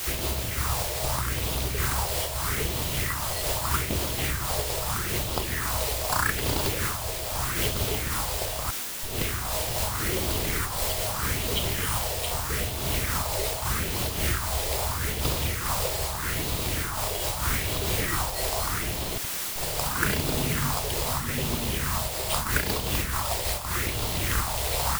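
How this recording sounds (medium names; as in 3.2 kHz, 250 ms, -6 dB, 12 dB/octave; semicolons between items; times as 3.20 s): aliases and images of a low sample rate 6.2 kHz, jitter 0%; phasing stages 4, 0.8 Hz, lowest notch 230–1700 Hz; a quantiser's noise floor 6-bit, dither triangular; random flutter of the level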